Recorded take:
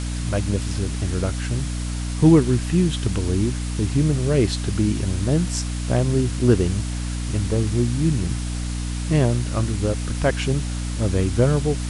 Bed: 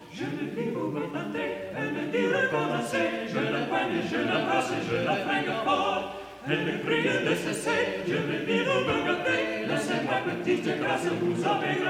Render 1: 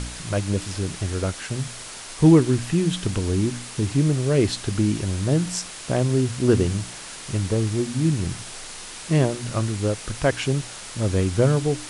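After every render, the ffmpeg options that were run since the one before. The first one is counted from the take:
-af "bandreject=f=60:t=h:w=4,bandreject=f=120:t=h:w=4,bandreject=f=180:t=h:w=4,bandreject=f=240:t=h:w=4,bandreject=f=300:t=h:w=4"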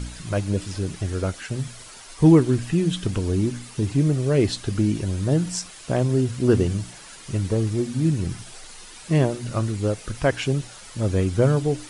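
-af "afftdn=nr=9:nf=-38"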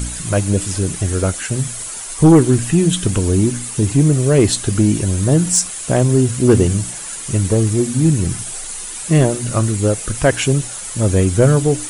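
-af "aexciter=amount=4.2:drive=4.2:freq=6.8k,aeval=exprs='0.668*sin(PI/2*1.58*val(0)/0.668)':c=same"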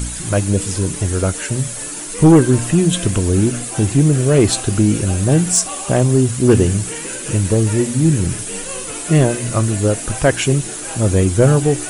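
-filter_complex "[1:a]volume=-6dB[a];[0:a][a]amix=inputs=2:normalize=0"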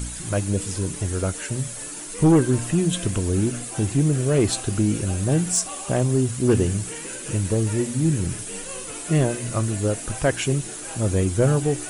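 -af "volume=-7dB"

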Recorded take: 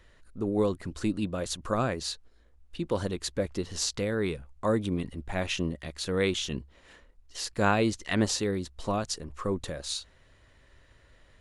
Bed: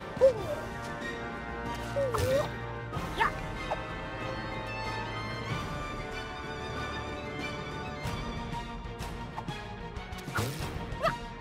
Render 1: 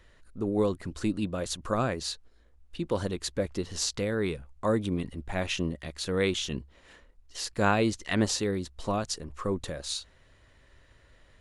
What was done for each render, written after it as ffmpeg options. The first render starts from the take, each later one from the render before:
-af anull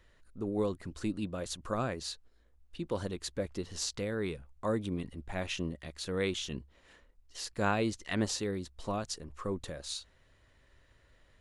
-af "volume=-5.5dB"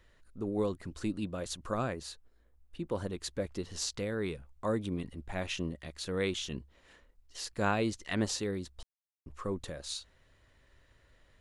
-filter_complex "[0:a]asettb=1/sr,asplit=3[a][b][c];[a]atrim=end=1.924[d];[b]atrim=start=1.92:end=3.14,asetpts=PTS-STARTPTS,afade=t=in:d=0.004:c=qsin,afade=t=out:st=1.216:d=0.004:c=qsin,equalizer=f=4.6k:w=0.74:g=-6[e];[c]atrim=start=3.136[f];[d][e]acrossfade=d=0.004:c1=hsin:c2=qsin[g];[g][f]acrossfade=d=0.004:c1=qsin:c2=hsin,asplit=3[h][i][j];[h]atrim=end=8.83,asetpts=PTS-STARTPTS,afade=t=out:st=8.826:d=0.004:c=hsin[k];[i]atrim=start=8.83:end=9.26,asetpts=PTS-STARTPTS,volume=0[l];[j]atrim=start=9.26,asetpts=PTS-STARTPTS,afade=t=in:d=0.004:c=hsin[m];[k][l][m]concat=n=3:v=0:a=1"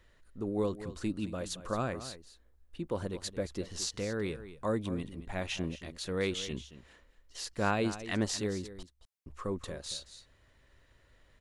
-af "aecho=1:1:223:0.211"

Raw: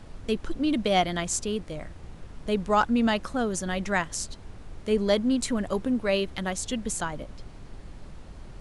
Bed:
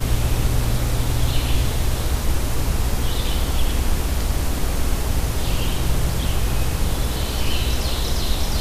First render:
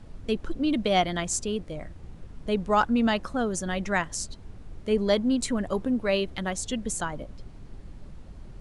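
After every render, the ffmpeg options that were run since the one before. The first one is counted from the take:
-af "afftdn=nr=6:nf=-45"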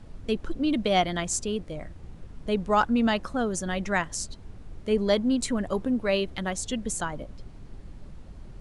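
-af anull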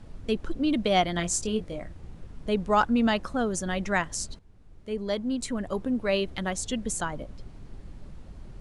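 -filter_complex "[0:a]asettb=1/sr,asplit=3[a][b][c];[a]atrim=end=1.144[d];[b]atrim=start=1.14:end=1.82,asetpts=PTS-STARTPTS,afade=t=in:d=0.004:c=qsin,afade=t=out:st=0.676:d=0.004:c=qsin,asplit=2[e][f];[f]adelay=23,volume=-7dB[g];[e][g]amix=inputs=2:normalize=0,atrim=end_sample=29988[h];[c]atrim=start=1.816[i];[d][h]acrossfade=d=0.004:c1=hsin:c2=qsin[j];[j][i]acrossfade=d=0.004:c1=qsin:c2=hsin,asplit=2[k][l];[k]atrim=end=4.39,asetpts=PTS-STARTPTS,afade=t=out:st=4.386:d=0.004:c=hsin:silence=0.177828[m];[l]atrim=start=4.39,asetpts=PTS-STARTPTS,afade=t=in:d=1.92:silence=0.177828[n];[m][n]concat=n=2:v=0:a=1"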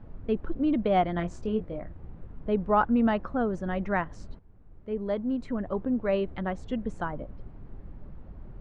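-af "lowpass=1.5k"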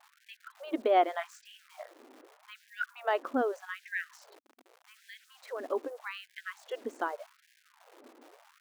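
-af "aeval=exprs='val(0)*gte(abs(val(0)),0.00398)':c=same,afftfilt=real='re*gte(b*sr/1024,220*pow(1600/220,0.5+0.5*sin(2*PI*0.83*pts/sr)))':imag='im*gte(b*sr/1024,220*pow(1600/220,0.5+0.5*sin(2*PI*0.83*pts/sr)))':win_size=1024:overlap=0.75"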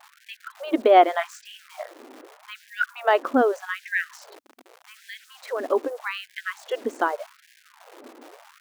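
-af "volume=10dB"

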